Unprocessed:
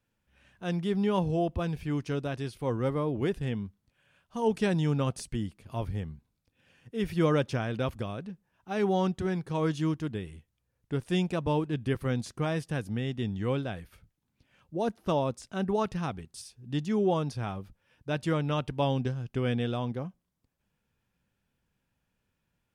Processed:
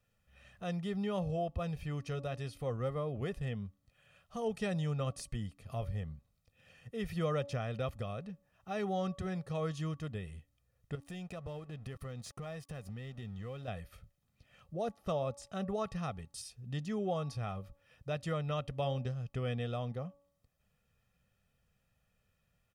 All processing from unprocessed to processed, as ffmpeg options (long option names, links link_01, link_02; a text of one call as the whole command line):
ffmpeg -i in.wav -filter_complex "[0:a]asettb=1/sr,asplit=3[link_01][link_02][link_03];[link_01]atrim=end=10.954[link_04];[link_02]atrim=start=10.95:end=13.68,asetpts=PTS-STARTPTS,afade=type=in:duration=0.004:curve=qsin,afade=type=out:start_time=2.726:duration=0.004:curve=qsin,acompressor=threshold=-39dB:ratio=3:attack=3.2:release=140:knee=1:detection=peak,aeval=exprs='sgn(val(0))*max(abs(val(0))-0.00112,0)':channel_layout=same[link_05];[link_03]atrim=start=13.676[link_06];[link_04][link_05]acrossfade=duration=0.004:curve1=hsin:curve2=qsin[link_07];[link_07][link_06]acrossfade=duration=0.004:curve1=qsin:curve2=hsin,aecho=1:1:1.6:0.66,bandreject=frequency=283.1:width_type=h:width=4,bandreject=frequency=566.2:width_type=h:width=4,bandreject=frequency=849.3:width_type=h:width=4,bandreject=frequency=1132.4:width_type=h:width=4,acompressor=threshold=-47dB:ratio=1.5" out.wav